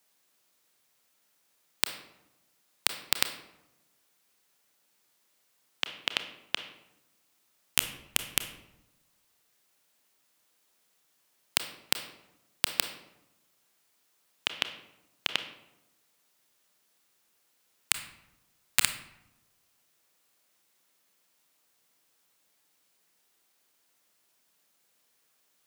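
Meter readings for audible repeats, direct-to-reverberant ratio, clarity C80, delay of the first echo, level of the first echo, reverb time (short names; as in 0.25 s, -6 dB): none, 8.0 dB, 12.5 dB, none, none, 0.95 s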